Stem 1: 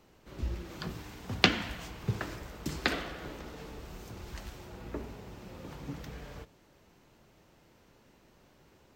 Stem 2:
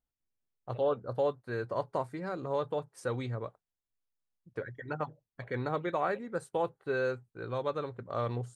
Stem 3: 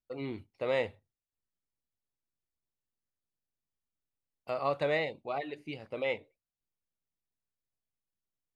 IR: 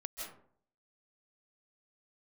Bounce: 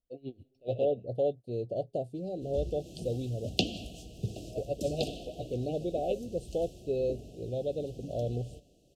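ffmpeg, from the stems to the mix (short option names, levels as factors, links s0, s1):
-filter_complex "[0:a]lowpass=f=11000:w=0.5412,lowpass=f=11000:w=1.3066,aemphasis=mode=production:type=50fm,adelay=2150,volume=0.708,asplit=2[s0][s1];[s1]volume=0.211[s2];[1:a]volume=1.19[s3];[2:a]aeval=exprs='val(0)*pow(10,-27*(0.5-0.5*cos(2*PI*7.2*n/s))/20)':c=same,volume=1.19,asplit=2[s4][s5];[s5]volume=0.0708[s6];[3:a]atrim=start_sample=2205[s7];[s2][s6]amix=inputs=2:normalize=0[s8];[s8][s7]afir=irnorm=-1:irlink=0[s9];[s0][s3][s4][s9]amix=inputs=4:normalize=0,asuperstop=centerf=1400:order=20:qfactor=0.73,highshelf=f=2400:g=-7.5"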